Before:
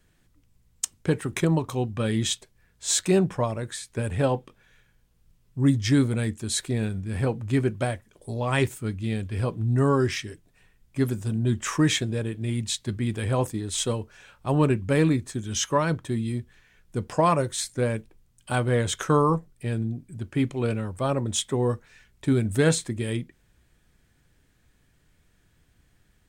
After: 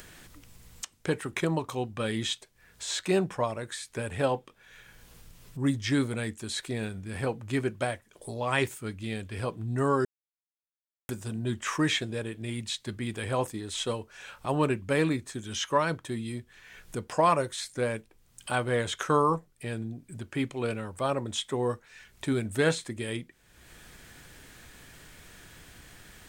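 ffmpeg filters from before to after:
ffmpeg -i in.wav -filter_complex "[0:a]asplit=3[link_01][link_02][link_03];[link_01]atrim=end=10.05,asetpts=PTS-STARTPTS,afade=type=out:start_time=10.046:duration=0.004:curve=hsin[link_04];[link_02]atrim=start=10.05:end=11.09,asetpts=PTS-STARTPTS,volume=0[link_05];[link_03]atrim=start=11.09,asetpts=PTS-STARTPTS,afade=type=in:duration=0.004:curve=hsin[link_06];[link_04][link_05][link_06]concat=n=3:v=0:a=1,acrossover=split=4100[link_07][link_08];[link_08]acompressor=threshold=-38dB:ratio=4:attack=1:release=60[link_09];[link_07][link_09]amix=inputs=2:normalize=0,lowshelf=frequency=300:gain=-10.5,acompressor=mode=upward:threshold=-34dB:ratio=2.5" out.wav

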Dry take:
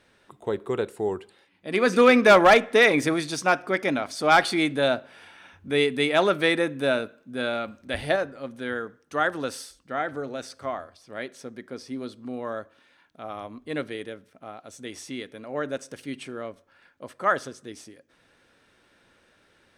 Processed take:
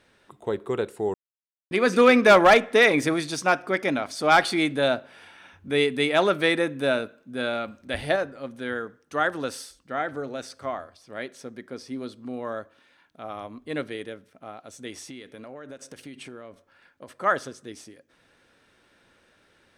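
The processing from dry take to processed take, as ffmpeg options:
ffmpeg -i in.wav -filter_complex "[0:a]asettb=1/sr,asplit=3[link_01][link_02][link_03];[link_01]atrim=end=14.934[link_04];[link_02]atrim=start=14.93:end=17.08,asetpts=PTS-STARTPTS,afade=type=in:duration=0.004:curve=qsin,afade=type=out:start_time=2.146:duration=0.004:curve=qsin,acompressor=threshold=-36dB:ratio=16:attack=3.2:release=140:knee=1:detection=peak[link_05];[link_03]atrim=start=17.076[link_06];[link_04][link_05]acrossfade=duration=0.004:curve1=hsin:curve2=qsin[link_07];[link_07][link_06]acrossfade=duration=0.004:curve1=qsin:curve2=hsin,asplit=3[link_08][link_09][link_10];[link_08]atrim=end=1.14,asetpts=PTS-STARTPTS,afade=type=out:start_time=1.136:duration=0.004:curve=hsin[link_11];[link_09]atrim=start=1.14:end=1.71,asetpts=PTS-STARTPTS,volume=0[link_12];[link_10]atrim=start=1.71,asetpts=PTS-STARTPTS,afade=type=in:duration=0.004:curve=hsin[link_13];[link_11][link_12][link_13]concat=n=3:v=0:a=1" out.wav

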